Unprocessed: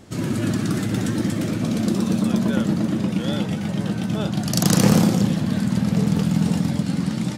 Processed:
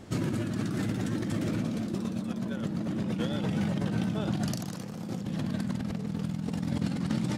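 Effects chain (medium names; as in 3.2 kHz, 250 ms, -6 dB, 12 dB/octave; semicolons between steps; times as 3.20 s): compressor with a negative ratio -26 dBFS, ratio -1; treble shelf 4.5 kHz -5.5 dB; trim -5.5 dB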